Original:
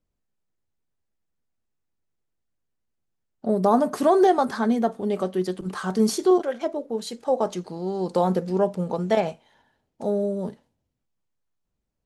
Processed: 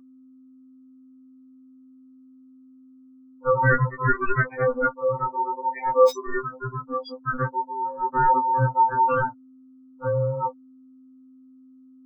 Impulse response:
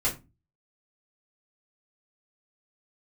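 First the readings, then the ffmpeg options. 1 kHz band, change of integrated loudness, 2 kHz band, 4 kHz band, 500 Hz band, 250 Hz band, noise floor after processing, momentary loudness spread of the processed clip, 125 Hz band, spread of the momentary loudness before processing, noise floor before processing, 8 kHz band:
+5.0 dB, 0.0 dB, +11.5 dB, −9.0 dB, −2.0 dB, −11.5 dB, −51 dBFS, 11 LU, +6.0 dB, 11 LU, −79 dBFS, below −10 dB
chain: -filter_complex "[0:a]afftfilt=real='re*gte(hypot(re,im),0.126)':imag='im*gte(hypot(re,im),0.126)':win_size=1024:overlap=0.75,asubboost=boost=10.5:cutoff=96,aeval=exprs='val(0)+0.002*sin(2*PI*470*n/s)':channel_layout=same,equalizer=frequency=5200:width=8:gain=5.5,aeval=exprs='val(0)*sin(2*PI*730*n/s)':channel_layout=same,acrossover=split=120|1400|2300[link_01][link_02][link_03][link_04];[link_04]aeval=exprs='(mod(29.9*val(0)+1,2)-1)/29.9':channel_layout=same[link_05];[link_01][link_02][link_03][link_05]amix=inputs=4:normalize=0,afftfilt=real='re*2.45*eq(mod(b,6),0)':imag='im*2.45*eq(mod(b,6),0)':win_size=2048:overlap=0.75,volume=6dB"

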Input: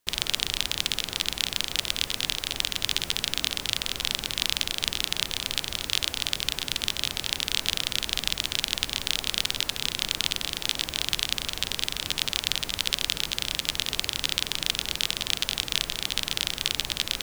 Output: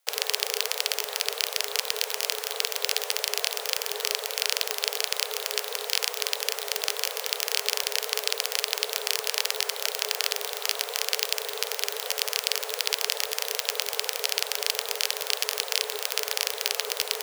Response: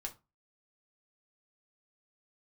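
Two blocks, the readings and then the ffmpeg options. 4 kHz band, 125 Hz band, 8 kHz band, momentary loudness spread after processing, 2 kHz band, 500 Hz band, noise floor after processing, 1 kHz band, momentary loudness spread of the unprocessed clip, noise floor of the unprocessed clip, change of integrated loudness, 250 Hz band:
−2.5 dB, below −40 dB, +2.5 dB, 2 LU, +0.5 dB, +9.5 dB, −38 dBFS, +4.0 dB, 2 LU, −40 dBFS, 0.0 dB, below −15 dB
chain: -af "aeval=exprs='0.891*(cos(1*acos(clip(val(0)/0.891,-1,1)))-cos(1*PI/2))+0.316*(cos(7*acos(clip(val(0)/0.891,-1,1)))-cos(7*PI/2))':channel_layout=same,afreqshift=410,volume=-1dB"

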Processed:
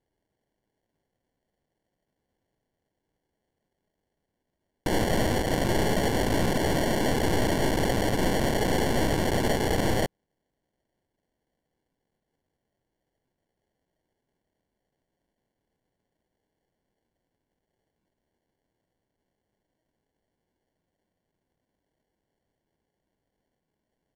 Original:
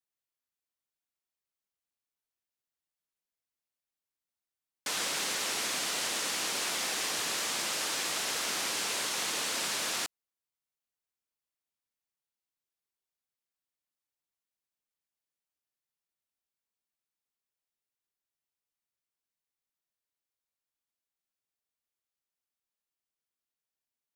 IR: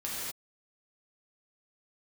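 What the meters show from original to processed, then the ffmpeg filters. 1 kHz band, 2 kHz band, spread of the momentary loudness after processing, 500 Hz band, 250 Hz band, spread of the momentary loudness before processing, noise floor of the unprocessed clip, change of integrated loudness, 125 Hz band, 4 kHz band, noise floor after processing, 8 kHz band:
+8.5 dB, +3.0 dB, 1 LU, +16.5 dB, +20.5 dB, 1 LU, below −85 dBFS, +4.5 dB, +28.0 dB, −2.5 dB, −83 dBFS, −5.5 dB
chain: -af "acrusher=samples=35:mix=1:aa=0.000001,aeval=exprs='0.0944*(cos(1*acos(clip(val(0)/0.0944,-1,1)))-cos(1*PI/2))+0.0473*(cos(5*acos(clip(val(0)/0.0944,-1,1)))-cos(5*PI/2))+0.0299*(cos(8*acos(clip(val(0)/0.0944,-1,1)))-cos(8*PI/2))':channel_layout=same,aresample=32000,aresample=44100"

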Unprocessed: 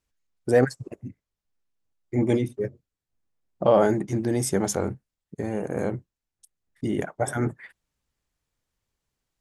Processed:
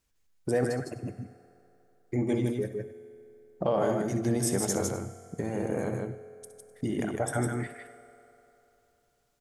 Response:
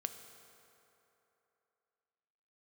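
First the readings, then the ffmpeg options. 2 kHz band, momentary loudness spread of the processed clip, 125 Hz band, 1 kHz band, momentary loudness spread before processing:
−4.5 dB, 18 LU, −3.0 dB, −5.5 dB, 17 LU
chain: -filter_complex "[0:a]acompressor=threshold=-36dB:ratio=2,aecho=1:1:64|70|148|157|254:0.211|0.112|0.188|0.631|0.106,asplit=2[link_01][link_02];[1:a]atrim=start_sample=2205,highshelf=frequency=4800:gain=7[link_03];[link_02][link_03]afir=irnorm=-1:irlink=0,volume=1dB[link_04];[link_01][link_04]amix=inputs=2:normalize=0,volume=-3dB"

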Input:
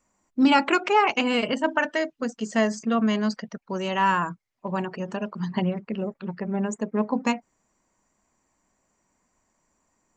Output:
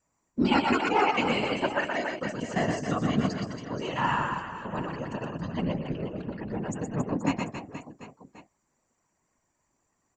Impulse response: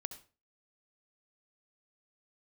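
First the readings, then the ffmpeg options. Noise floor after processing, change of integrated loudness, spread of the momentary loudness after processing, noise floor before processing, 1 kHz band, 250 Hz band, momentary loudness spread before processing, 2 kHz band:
−76 dBFS, −4.0 dB, 12 LU, −74 dBFS, −3.5 dB, −4.5 dB, 12 LU, −3.5 dB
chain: -af "aecho=1:1:120|276|478.8|742.4|1085:0.631|0.398|0.251|0.158|0.1,afftfilt=real='hypot(re,im)*cos(2*PI*random(0))':imag='hypot(re,im)*sin(2*PI*random(1))':win_size=512:overlap=0.75"

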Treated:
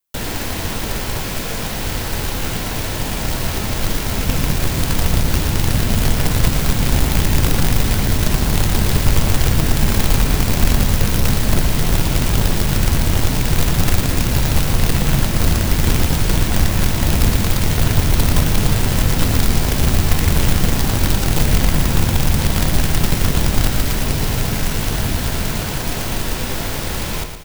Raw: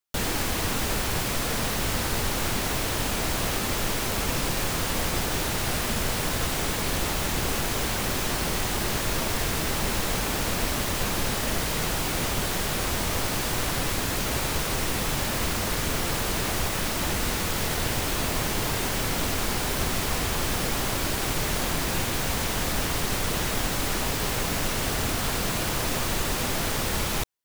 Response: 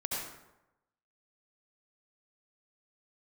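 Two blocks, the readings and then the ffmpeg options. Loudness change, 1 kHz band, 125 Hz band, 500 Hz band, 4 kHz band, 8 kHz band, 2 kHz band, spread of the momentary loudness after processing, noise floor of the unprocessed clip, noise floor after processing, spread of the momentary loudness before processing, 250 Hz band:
+8.0 dB, +3.5 dB, +14.0 dB, +5.0 dB, +4.5 dB, +4.0 dB, +4.0 dB, 6 LU, −28 dBFS, −23 dBFS, 0 LU, +10.0 dB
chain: -filter_complex "[0:a]aemphasis=mode=production:type=50kf,bandreject=frequency=1200:width=15,acrossover=split=6000[link_01][link_02];[link_02]acompressor=threshold=-27dB:ratio=4:attack=1:release=60[link_03];[link_01][link_03]amix=inputs=2:normalize=0,highshelf=frequency=2500:gain=-9.5,bandreject=frequency=60:width_type=h:width=6,bandreject=frequency=120:width_type=h:width=6,bandreject=frequency=180:width_type=h:width=6,acrossover=split=210|1900[link_04][link_05][link_06];[link_04]dynaudnorm=framelen=780:gausssize=11:maxgain=11dB[link_07];[link_05]flanger=delay=15.5:depth=4.1:speed=0.83[link_08];[link_07][link_08][link_06]amix=inputs=3:normalize=0,acrusher=bits=2:mode=log:mix=0:aa=0.000001,asplit=2[link_09][link_10];[link_10]aecho=0:1:116|232|348|464|580|696:0.398|0.191|0.0917|0.044|0.0211|0.0101[link_11];[link_09][link_11]amix=inputs=2:normalize=0,volume=5dB"

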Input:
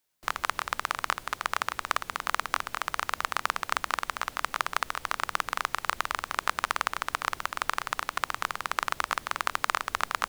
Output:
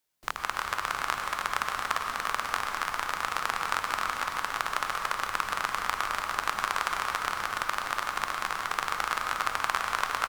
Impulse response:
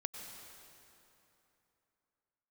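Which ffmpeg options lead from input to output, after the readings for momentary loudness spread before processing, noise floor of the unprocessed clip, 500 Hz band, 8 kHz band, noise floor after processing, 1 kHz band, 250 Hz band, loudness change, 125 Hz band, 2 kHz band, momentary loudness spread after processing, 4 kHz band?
3 LU, −51 dBFS, +0.5 dB, 0.0 dB, −38 dBFS, +0.5 dB, +0.5 dB, +0.5 dB, +0.5 dB, +0.5 dB, 2 LU, 0.0 dB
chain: -filter_complex "[0:a]aecho=1:1:289:0.562[link_01];[1:a]atrim=start_sample=2205,asetrate=42336,aresample=44100[link_02];[link_01][link_02]afir=irnorm=-1:irlink=0"

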